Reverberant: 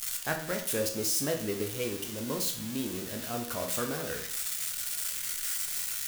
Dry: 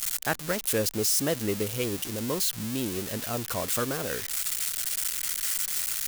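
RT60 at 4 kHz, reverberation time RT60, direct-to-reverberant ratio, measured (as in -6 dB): 0.55 s, 0.60 s, 2.5 dB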